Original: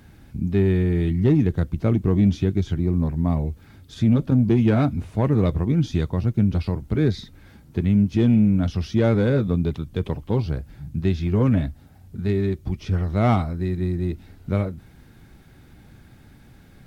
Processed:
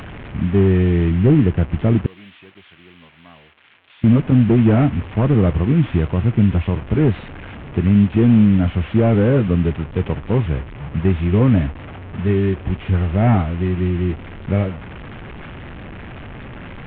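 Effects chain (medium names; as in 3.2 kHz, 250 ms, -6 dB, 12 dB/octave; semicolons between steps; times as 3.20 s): one-bit delta coder 16 kbps, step -32.5 dBFS; 2.06–4.04 s: differentiator; trim +5 dB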